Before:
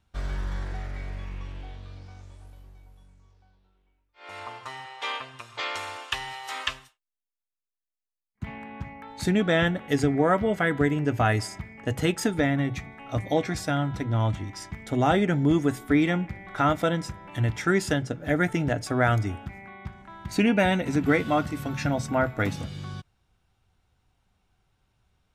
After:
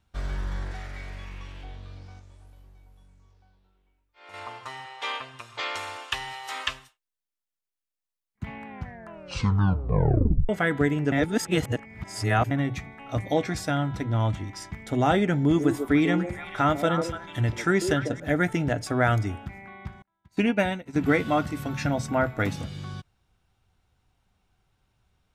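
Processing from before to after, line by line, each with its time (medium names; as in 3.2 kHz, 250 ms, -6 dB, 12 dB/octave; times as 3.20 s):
0.71–1.64 s: tilt shelf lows -4 dB
2.19–4.34 s: compression 1.5:1, threshold -53 dBFS
8.66 s: tape stop 1.83 s
11.12–12.51 s: reverse
15.41–18.20 s: repeats whose band climbs or falls 146 ms, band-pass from 430 Hz, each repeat 1.4 oct, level -3 dB
20.02–20.96 s: upward expansion 2.5:1, over -42 dBFS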